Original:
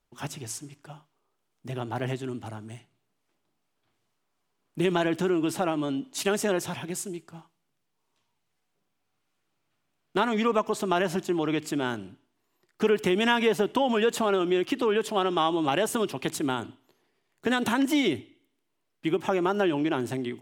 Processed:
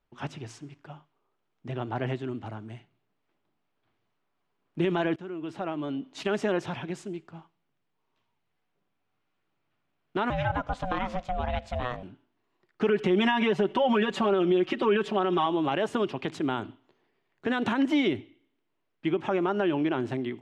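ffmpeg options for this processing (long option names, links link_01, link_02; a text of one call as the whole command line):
ffmpeg -i in.wav -filter_complex "[0:a]asettb=1/sr,asplit=3[link_01][link_02][link_03];[link_01]atrim=end=10.304[link_04];[link_02]atrim=start=10.3:end=12.03,asetpts=PTS-STARTPTS,afade=type=in:duration=0.004:curve=qsin,afade=type=out:start_time=1.726:duration=0.004:curve=qsin,aeval=exprs='val(0)*sin(2*PI*370*n/s)':channel_layout=same[link_05];[link_03]atrim=start=12.026[link_06];[link_04][link_05]acrossfade=duration=0.004:curve1=hsin:curve2=qsin[link_07];[link_07][link_06]acrossfade=duration=0.004:curve1=qsin:curve2=hsin,asettb=1/sr,asplit=3[link_08][link_09][link_10];[link_08]atrim=end=12.884[link_11];[link_09]atrim=start=12.88:end=15.46,asetpts=PTS-STARTPTS,afade=type=in:duration=0.004:curve=qsin,afade=type=out:start_time=2.576:duration=0.004:curve=qsin,aecho=1:1:5.3:0.86,atrim=end_sample=113778[link_12];[link_10]atrim=start=15.456[link_13];[link_11][link_12]acrossfade=duration=0.004:curve1=hsin:curve2=qsin[link_14];[link_14][link_13]acrossfade=duration=0.004:curve1=qsin:curve2=hsin,asplit=2[link_15][link_16];[link_15]atrim=end=5.16,asetpts=PTS-STARTPTS,afade=type=out:start_time=5.156:duration=0.004:curve=hsin:silence=0.133352[link_17];[link_16]atrim=start=5.16,asetpts=PTS-STARTPTS,afade=type=in:duration=1.15:silence=0.133352[link_18];[link_17][link_18]concat=n=2:v=0:a=1,alimiter=limit=-15dB:level=0:latency=1:release=58,lowpass=3200" out.wav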